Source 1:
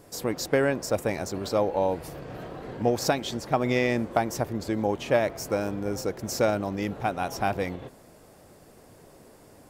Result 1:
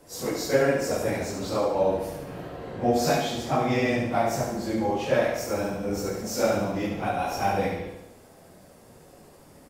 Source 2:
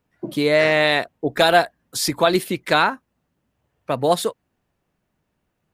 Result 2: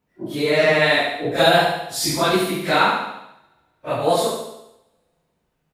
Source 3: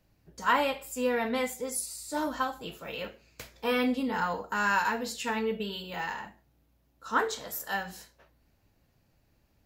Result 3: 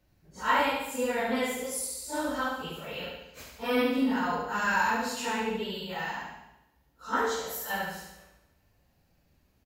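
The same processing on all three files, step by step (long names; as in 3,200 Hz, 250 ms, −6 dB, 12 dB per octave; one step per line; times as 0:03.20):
random phases in long frames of 100 ms
repeating echo 71 ms, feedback 53%, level −4.5 dB
coupled-rooms reverb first 0.84 s, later 2.4 s, from −25 dB, DRR 10 dB
level −1 dB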